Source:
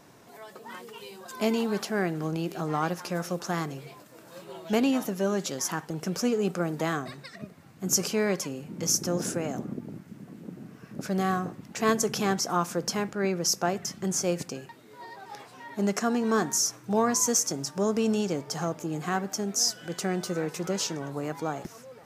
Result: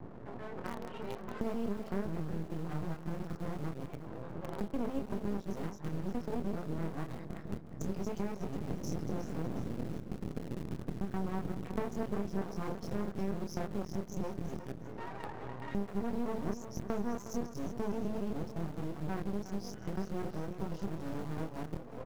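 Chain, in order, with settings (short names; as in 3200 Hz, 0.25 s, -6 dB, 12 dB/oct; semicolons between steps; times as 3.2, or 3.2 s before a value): local time reversal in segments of 0.128 s; HPF 41 Hz 12 dB/oct; tilt -4.5 dB/oct; loudest bins only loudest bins 64; LPF 6300 Hz; doubler 25 ms -3 dB; in parallel at -9 dB: bit-crush 5-bit; on the sum: compressor 4:1, threshold -36 dBFS, peak gain reduction 23.5 dB; on a send: feedback echo 0.362 s, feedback 39%, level -11.5 dB; on the sum: half-wave rectifier; gain +2 dB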